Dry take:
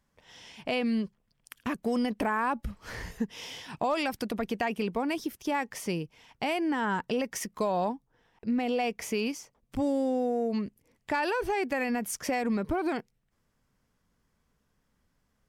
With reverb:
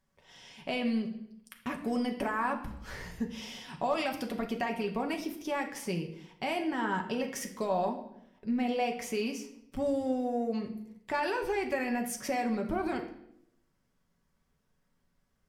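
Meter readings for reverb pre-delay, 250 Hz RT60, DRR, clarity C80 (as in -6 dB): 4 ms, 0.90 s, 2.0 dB, 13.0 dB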